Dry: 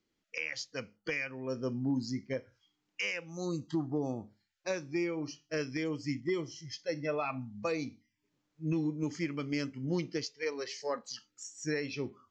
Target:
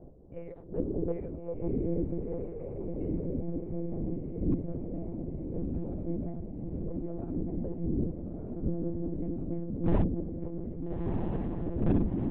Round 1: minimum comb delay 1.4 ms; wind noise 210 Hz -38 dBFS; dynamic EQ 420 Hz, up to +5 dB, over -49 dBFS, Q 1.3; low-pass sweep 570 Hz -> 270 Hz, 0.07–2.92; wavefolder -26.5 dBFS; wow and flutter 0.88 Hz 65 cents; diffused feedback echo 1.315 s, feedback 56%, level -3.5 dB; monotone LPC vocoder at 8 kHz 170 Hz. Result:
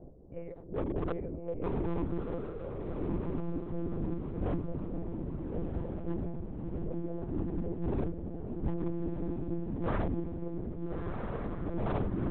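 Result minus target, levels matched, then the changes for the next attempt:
wavefolder: distortion +10 dB
change: wavefolder -18.5 dBFS

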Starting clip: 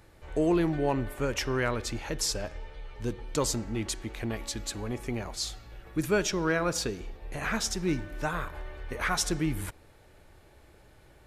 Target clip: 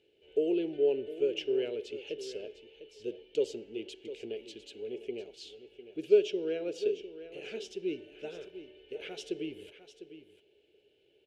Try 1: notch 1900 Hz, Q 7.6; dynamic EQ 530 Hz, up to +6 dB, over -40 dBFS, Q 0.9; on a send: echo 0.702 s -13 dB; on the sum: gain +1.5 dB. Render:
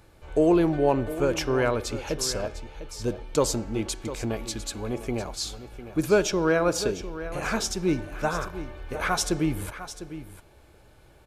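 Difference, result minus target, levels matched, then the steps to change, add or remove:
1000 Hz band +19.0 dB
add after dynamic EQ: double band-pass 1100 Hz, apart 2.8 oct

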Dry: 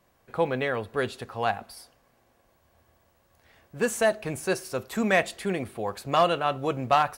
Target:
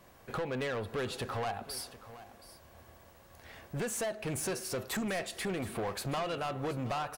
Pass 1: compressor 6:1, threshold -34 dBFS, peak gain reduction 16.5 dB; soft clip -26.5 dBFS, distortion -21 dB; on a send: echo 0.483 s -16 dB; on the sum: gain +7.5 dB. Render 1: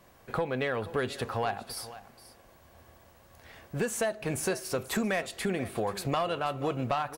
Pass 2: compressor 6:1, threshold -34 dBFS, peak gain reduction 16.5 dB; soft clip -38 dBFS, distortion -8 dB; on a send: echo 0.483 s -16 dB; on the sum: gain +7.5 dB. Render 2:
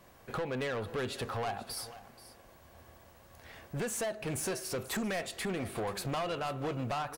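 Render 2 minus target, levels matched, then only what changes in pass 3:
echo 0.241 s early
change: echo 0.724 s -16 dB

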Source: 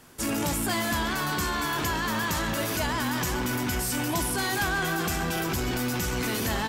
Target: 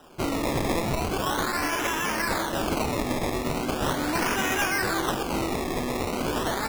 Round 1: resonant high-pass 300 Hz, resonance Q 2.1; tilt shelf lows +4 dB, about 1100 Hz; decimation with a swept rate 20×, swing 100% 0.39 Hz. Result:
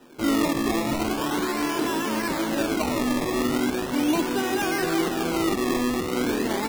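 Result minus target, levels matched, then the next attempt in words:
1000 Hz band -2.5 dB
resonant high-pass 300 Hz, resonance Q 2.1; tilt shelf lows -5.5 dB, about 1100 Hz; decimation with a swept rate 20×, swing 100% 0.39 Hz

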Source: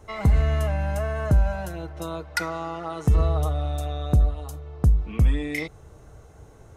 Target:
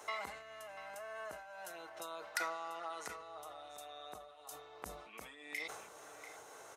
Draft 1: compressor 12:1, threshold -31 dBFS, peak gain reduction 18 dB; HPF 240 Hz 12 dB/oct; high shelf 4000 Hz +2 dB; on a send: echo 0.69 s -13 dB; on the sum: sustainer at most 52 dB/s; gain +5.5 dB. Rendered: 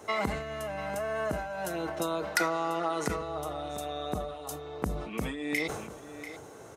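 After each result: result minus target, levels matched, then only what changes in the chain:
250 Hz band +11.5 dB; compressor: peak gain reduction -10.5 dB
change: HPF 750 Hz 12 dB/oct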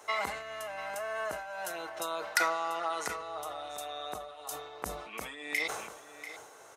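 compressor: peak gain reduction -10.5 dB
change: compressor 12:1, threshold -42.5 dBFS, peak gain reduction 28.5 dB

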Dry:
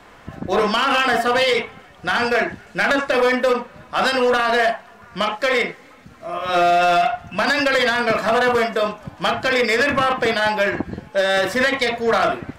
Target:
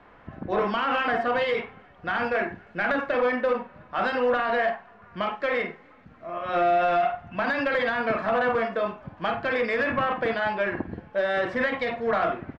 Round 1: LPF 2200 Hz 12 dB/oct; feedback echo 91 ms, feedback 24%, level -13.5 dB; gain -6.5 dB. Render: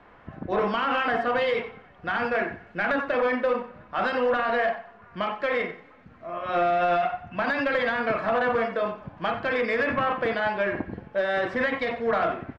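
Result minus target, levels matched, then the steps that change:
echo 42 ms late
change: feedback echo 49 ms, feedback 24%, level -13.5 dB

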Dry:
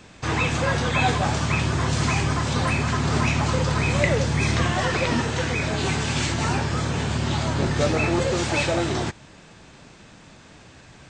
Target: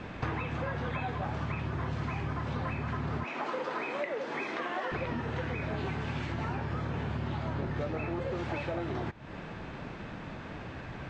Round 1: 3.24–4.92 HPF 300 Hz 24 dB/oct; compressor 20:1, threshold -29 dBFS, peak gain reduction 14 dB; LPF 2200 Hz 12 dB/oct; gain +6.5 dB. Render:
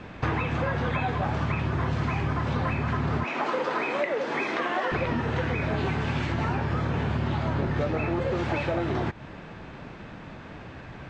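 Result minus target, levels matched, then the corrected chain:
compressor: peak gain reduction -7 dB
3.24–4.92 HPF 300 Hz 24 dB/oct; compressor 20:1, threshold -36.5 dBFS, peak gain reduction 21 dB; LPF 2200 Hz 12 dB/oct; gain +6.5 dB

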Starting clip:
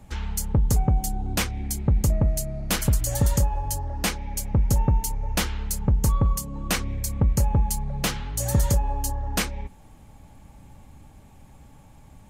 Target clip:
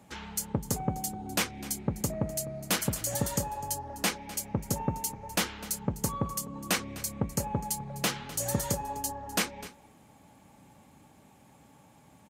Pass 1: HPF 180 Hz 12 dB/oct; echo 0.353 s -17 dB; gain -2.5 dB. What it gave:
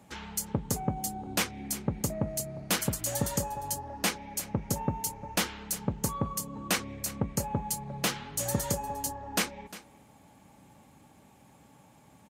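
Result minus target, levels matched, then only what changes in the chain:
echo 0.1 s late
change: echo 0.253 s -17 dB

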